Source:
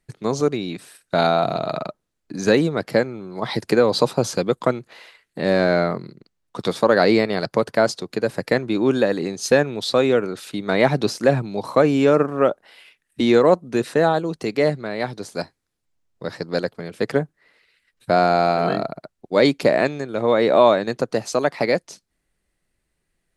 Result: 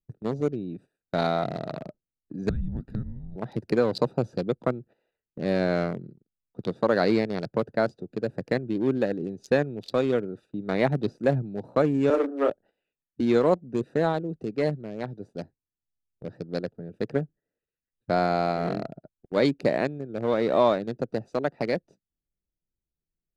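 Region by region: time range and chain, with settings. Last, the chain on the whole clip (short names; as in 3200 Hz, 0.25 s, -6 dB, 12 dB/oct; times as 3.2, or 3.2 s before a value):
2.49–3.36 frequency shift -350 Hz + compressor 4:1, threshold -22 dBFS
12.1–12.5 steep high-pass 260 Hz 72 dB/oct + doubler 32 ms -5.5 dB
whole clip: Wiener smoothing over 41 samples; gate -42 dBFS, range -11 dB; low shelf 250 Hz +4.5 dB; gain -7 dB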